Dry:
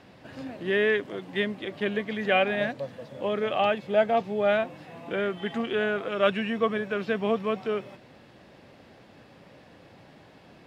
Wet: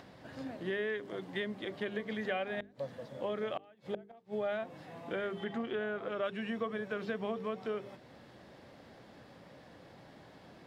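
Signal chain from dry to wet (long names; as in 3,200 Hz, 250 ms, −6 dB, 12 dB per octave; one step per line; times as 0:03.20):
0:02.59–0:04.35: gate with flip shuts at −17 dBFS, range −31 dB
parametric band 2,600 Hz −6 dB 0.33 octaves
mains-hum notches 50/100/150/200/250/300/350/400/450 Hz
downward compressor 4 to 1, threshold −29 dBFS, peak gain reduction 10.5 dB
0:05.44–0:06.24: high-shelf EQ 4,500 Hz −10.5 dB
upward compression, threshold −46 dBFS
level −4 dB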